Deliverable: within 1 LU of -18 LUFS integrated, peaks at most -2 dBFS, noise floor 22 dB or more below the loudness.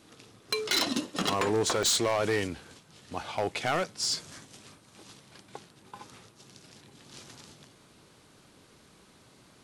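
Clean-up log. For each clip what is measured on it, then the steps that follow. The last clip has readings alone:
clipped samples 1.1%; clipping level -21.5 dBFS; dropouts 1; longest dropout 1.2 ms; loudness -28.5 LUFS; peak level -21.5 dBFS; loudness target -18.0 LUFS
-> clip repair -21.5 dBFS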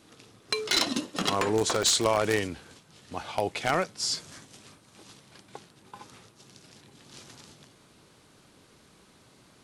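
clipped samples 0.0%; dropouts 1; longest dropout 1.2 ms
-> interpolate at 1.83 s, 1.2 ms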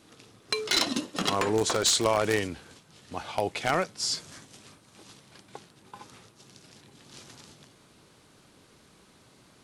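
dropouts 0; loudness -27.0 LUFS; peak level -12.5 dBFS; loudness target -18.0 LUFS
-> trim +9 dB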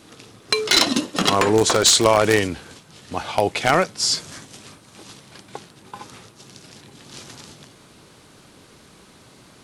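loudness -18.0 LUFS; peak level -3.5 dBFS; noise floor -50 dBFS

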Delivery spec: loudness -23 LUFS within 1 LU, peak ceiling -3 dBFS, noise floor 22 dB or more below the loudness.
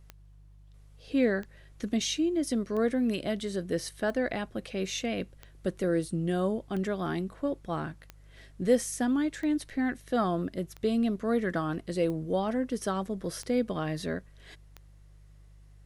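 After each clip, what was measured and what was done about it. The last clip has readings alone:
clicks found 12; hum 50 Hz; highest harmonic 150 Hz; hum level -51 dBFS; loudness -30.5 LUFS; peak level -13.0 dBFS; loudness target -23.0 LUFS
-> de-click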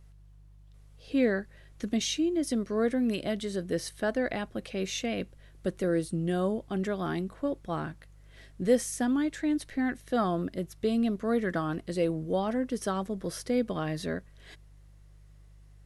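clicks found 0; hum 50 Hz; highest harmonic 150 Hz; hum level -51 dBFS
-> de-hum 50 Hz, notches 3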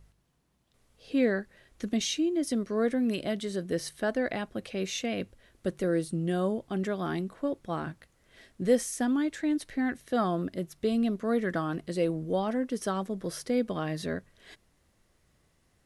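hum not found; loudness -30.5 LUFS; peak level -13.0 dBFS; loudness target -23.0 LUFS
-> trim +7.5 dB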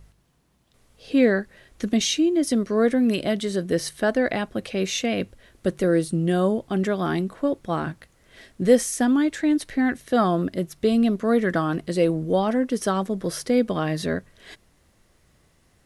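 loudness -23.0 LUFS; peak level -5.5 dBFS; noise floor -62 dBFS

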